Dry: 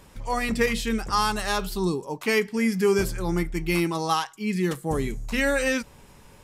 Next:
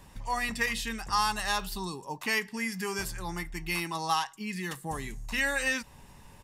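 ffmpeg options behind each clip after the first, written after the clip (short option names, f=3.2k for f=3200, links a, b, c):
-filter_complex "[0:a]aecho=1:1:1.1:0.36,acrossover=split=770|2600[a][b][c];[a]acompressor=threshold=-34dB:ratio=4[d];[d][b][c]amix=inputs=3:normalize=0,volume=-3dB"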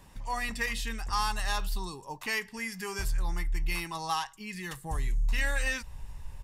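-af "asubboost=boost=10.5:cutoff=70,asoftclip=type=tanh:threshold=-16dB,volume=-2dB"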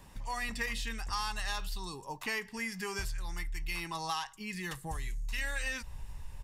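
-filter_complex "[0:a]acrossover=split=1500|7100[a][b][c];[a]acompressor=threshold=-36dB:ratio=4[d];[b]acompressor=threshold=-36dB:ratio=4[e];[c]acompressor=threshold=-51dB:ratio=4[f];[d][e][f]amix=inputs=3:normalize=0"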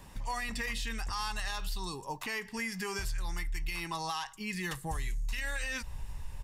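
-af "alimiter=level_in=5dB:limit=-24dB:level=0:latency=1:release=95,volume=-5dB,volume=3dB"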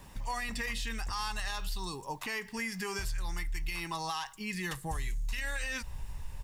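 -af "acrusher=bits=10:mix=0:aa=0.000001"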